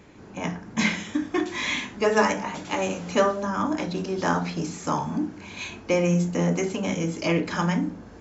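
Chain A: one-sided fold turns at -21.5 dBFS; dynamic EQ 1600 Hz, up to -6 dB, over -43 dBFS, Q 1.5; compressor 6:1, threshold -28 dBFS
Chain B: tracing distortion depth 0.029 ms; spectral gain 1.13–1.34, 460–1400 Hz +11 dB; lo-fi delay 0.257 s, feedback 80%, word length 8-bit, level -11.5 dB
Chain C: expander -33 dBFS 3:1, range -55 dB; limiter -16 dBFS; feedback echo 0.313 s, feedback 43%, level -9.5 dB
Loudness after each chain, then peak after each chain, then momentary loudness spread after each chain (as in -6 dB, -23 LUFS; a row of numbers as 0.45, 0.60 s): -33.0, -25.0, -27.0 LUFS; -18.0, -7.0, -14.0 dBFS; 4, 8, 7 LU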